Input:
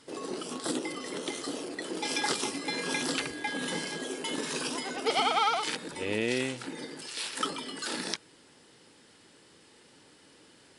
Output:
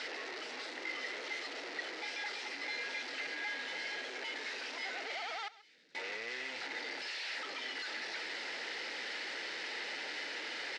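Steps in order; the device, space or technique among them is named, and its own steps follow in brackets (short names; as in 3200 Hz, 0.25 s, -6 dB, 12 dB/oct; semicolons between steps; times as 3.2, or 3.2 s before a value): home computer beeper (infinite clipping; speaker cabinet 650–4700 Hz, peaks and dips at 1100 Hz -10 dB, 2000 Hz +7 dB, 3300 Hz -4 dB); 5.48–5.95 passive tone stack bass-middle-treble 10-0-1; echo 0.134 s -18.5 dB; gain -3.5 dB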